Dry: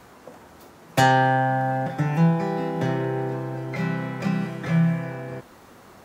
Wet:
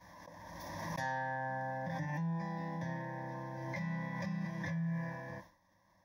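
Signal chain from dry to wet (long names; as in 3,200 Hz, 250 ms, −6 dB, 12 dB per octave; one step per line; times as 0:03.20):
downward expander −38 dBFS
EQ curve with evenly spaced ripples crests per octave 1.2, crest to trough 11 dB
reversed playback
downward compressor 6 to 1, threshold −26 dBFS, peak gain reduction 14.5 dB
reversed playback
phaser with its sweep stopped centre 2,000 Hz, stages 8
background raised ahead of every attack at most 24 dB per second
level −7.5 dB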